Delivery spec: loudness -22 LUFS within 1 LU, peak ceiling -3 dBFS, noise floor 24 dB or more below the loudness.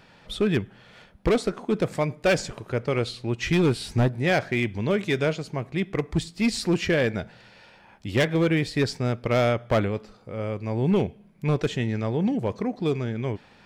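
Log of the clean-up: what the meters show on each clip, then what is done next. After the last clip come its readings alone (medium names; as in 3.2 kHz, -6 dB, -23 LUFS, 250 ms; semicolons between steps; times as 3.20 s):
clipped samples 1.6%; clipping level -15.5 dBFS; loudness -25.5 LUFS; peak level -15.5 dBFS; loudness target -22.0 LUFS
-> clip repair -15.5 dBFS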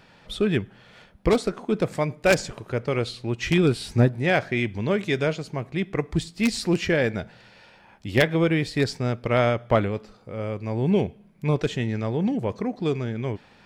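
clipped samples 0.0%; loudness -25.0 LUFS; peak level -6.5 dBFS; loudness target -22.0 LUFS
-> trim +3 dB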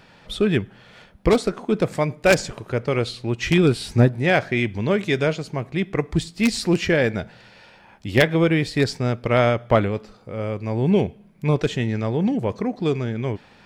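loudness -22.0 LUFS; peak level -3.5 dBFS; noise floor -51 dBFS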